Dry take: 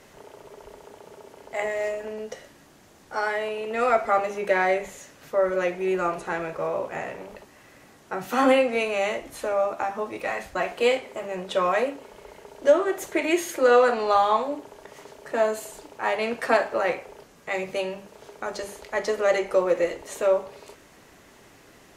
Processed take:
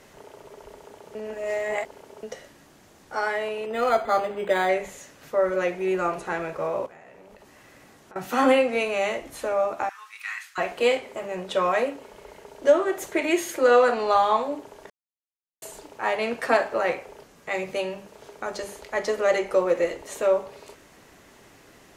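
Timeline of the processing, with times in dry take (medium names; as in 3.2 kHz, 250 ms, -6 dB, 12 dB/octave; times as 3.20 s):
1.15–2.23 s: reverse
3.66–4.69 s: decimation joined by straight lines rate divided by 8×
6.86–8.16 s: compression 8:1, threshold -45 dBFS
9.89–10.58 s: inverse Chebyshev high-pass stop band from 650 Hz
14.90–15.62 s: mute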